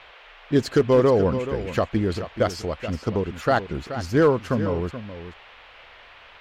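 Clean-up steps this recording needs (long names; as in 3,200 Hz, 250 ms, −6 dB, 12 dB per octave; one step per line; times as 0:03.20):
clipped peaks rebuilt −10 dBFS
noise reduction from a noise print 18 dB
echo removal 428 ms −11.5 dB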